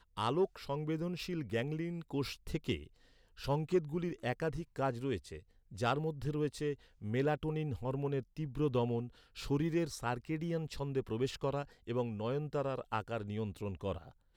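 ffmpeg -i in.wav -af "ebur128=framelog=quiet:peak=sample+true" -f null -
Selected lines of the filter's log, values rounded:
Integrated loudness:
  I:         -37.3 LUFS
  Threshold: -47.5 LUFS
Loudness range:
  LRA:         1.8 LU
  Threshold: -57.4 LUFS
  LRA low:   -38.3 LUFS
  LRA high:  -36.5 LUFS
Sample peak:
  Peak:      -20.9 dBFS
True peak:
  Peak:      -20.9 dBFS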